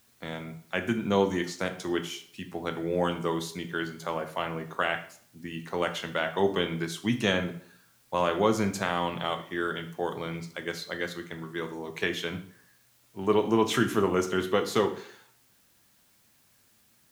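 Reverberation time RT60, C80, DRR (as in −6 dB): 0.55 s, 15.0 dB, 6.0 dB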